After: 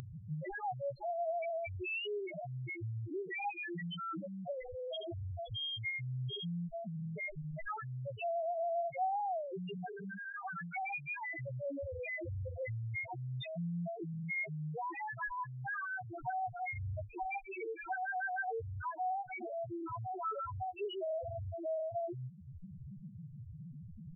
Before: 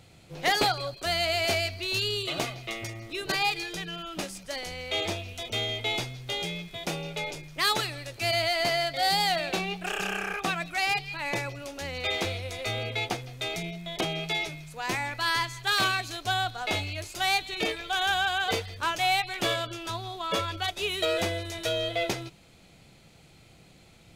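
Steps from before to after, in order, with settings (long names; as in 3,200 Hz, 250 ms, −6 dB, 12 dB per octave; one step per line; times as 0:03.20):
low-pass filter 3,300 Hz 24 dB per octave
wrap-around overflow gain 18 dB
pitch-shifted copies added −5 semitones −18 dB, +4 semitones −10 dB
downward compressor 3 to 1, threshold −45 dBFS, peak gain reduction 17 dB
on a send: echo with shifted repeats 152 ms, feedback 42%, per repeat +50 Hz, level −21.5 dB
on the sum: spectral peaks only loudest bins 1
upward compression, threshold −57 dBFS
level +14 dB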